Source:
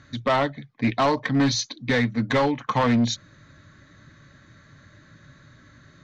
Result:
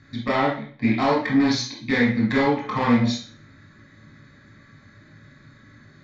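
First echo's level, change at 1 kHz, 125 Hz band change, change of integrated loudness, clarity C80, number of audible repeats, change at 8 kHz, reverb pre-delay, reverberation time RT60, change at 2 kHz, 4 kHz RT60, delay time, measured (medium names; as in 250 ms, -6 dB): no echo, 0.0 dB, -0.5 dB, +1.5 dB, 9.5 dB, no echo, no reading, 16 ms, 0.45 s, +2.0 dB, 0.40 s, no echo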